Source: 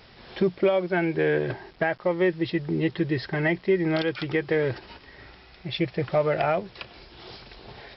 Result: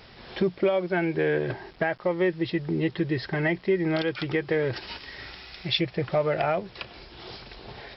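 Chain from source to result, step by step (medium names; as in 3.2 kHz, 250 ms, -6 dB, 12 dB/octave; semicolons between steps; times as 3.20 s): 4.73–5.81 s: treble shelf 2 kHz +11.5 dB; in parallel at -1.5 dB: compression, threshold -30 dBFS, peak gain reduction 12.5 dB; on the sum: trim -3.5 dB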